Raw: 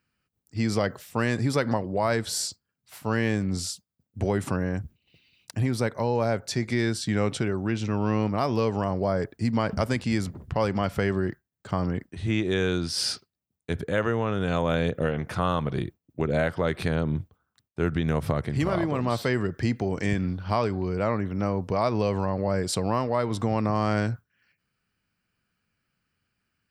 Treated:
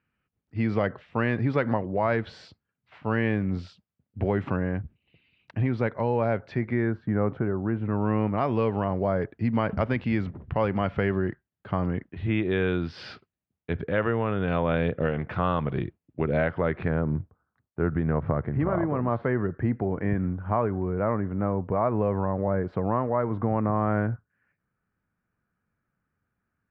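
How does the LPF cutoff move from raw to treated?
LPF 24 dB/oct
6.4 s 2800 Hz
7.01 s 1500 Hz
7.74 s 1500 Hz
8.44 s 2900 Hz
16.38 s 2900 Hz
17.13 s 1700 Hz

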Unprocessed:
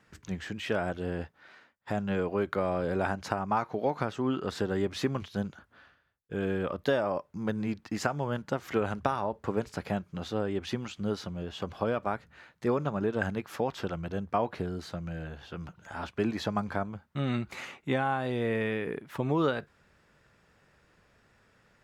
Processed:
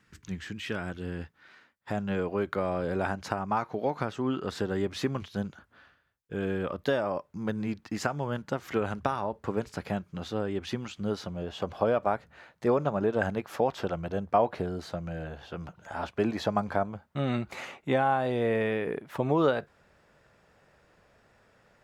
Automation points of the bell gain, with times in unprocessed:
bell 640 Hz 1.1 oct
1.18 s -10 dB
1.93 s -0.5 dB
10.93 s -0.5 dB
11.43 s +6.5 dB

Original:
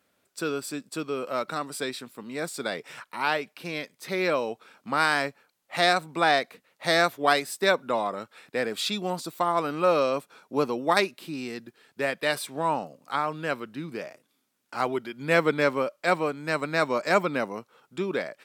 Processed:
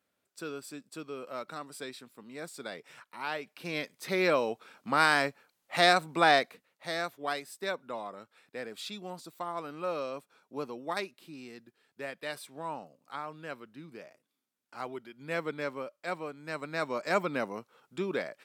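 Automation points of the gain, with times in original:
3.29 s -10 dB
3.79 s -1 dB
6.42 s -1 dB
6.85 s -12 dB
16.27 s -12 dB
17.47 s -4 dB

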